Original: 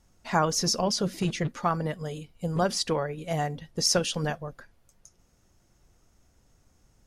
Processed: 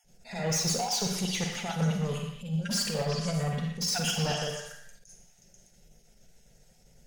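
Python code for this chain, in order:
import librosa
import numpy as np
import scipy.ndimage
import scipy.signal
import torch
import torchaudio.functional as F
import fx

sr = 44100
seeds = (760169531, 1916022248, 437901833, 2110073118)

y = fx.spec_dropout(x, sr, seeds[0], share_pct=25)
y = fx.peak_eq(y, sr, hz=200.0, db=11.0, octaves=0.92, at=(1.82, 4.19))
y = fx.over_compress(y, sr, threshold_db=-27.0, ratio=-0.5)
y = fx.fixed_phaser(y, sr, hz=300.0, stages=6)
y = 10.0 ** (-29.5 / 20.0) * np.tanh(y / 10.0 ** (-29.5 / 20.0))
y = fx.echo_stepped(y, sr, ms=122, hz=1500.0, octaves=0.7, feedback_pct=70, wet_db=-1.5)
y = fx.rev_schroeder(y, sr, rt60_s=0.66, comb_ms=38, drr_db=3.5)
y = fx.attack_slew(y, sr, db_per_s=160.0)
y = y * librosa.db_to_amplitude(3.5)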